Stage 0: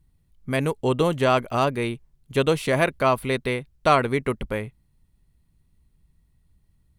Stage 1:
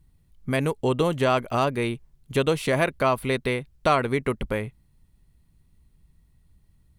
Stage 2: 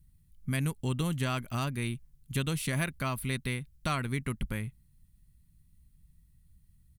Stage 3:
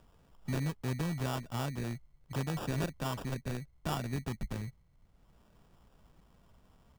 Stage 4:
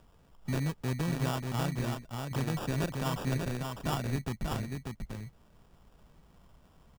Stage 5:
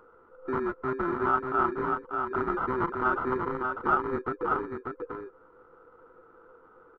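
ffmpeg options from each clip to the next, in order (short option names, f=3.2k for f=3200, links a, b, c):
-af "acompressor=threshold=-29dB:ratio=1.5,volume=3dB"
-af "firequalizer=gain_entry='entry(170,0);entry(450,-17);entry(1500,-6);entry(11000,5)':delay=0.05:min_phase=1,volume=-2dB"
-filter_complex "[0:a]acrossover=split=120|490|3000[a][b][c][d];[c]acompressor=mode=upward:threshold=-41dB:ratio=2.5[e];[a][b][e][d]amix=inputs=4:normalize=0,acrusher=samples=21:mix=1:aa=0.000001,volume=-3.5dB"
-af "aecho=1:1:590:0.596,volume=2dB"
-af "afftfilt=real='real(if(between(b,1,1008),(2*floor((b-1)/24)+1)*24-b,b),0)':imag='imag(if(between(b,1,1008),(2*floor((b-1)/24)+1)*24-b,b),0)*if(between(b,1,1008),-1,1)':win_size=2048:overlap=0.75,lowpass=f=1.3k:t=q:w=12"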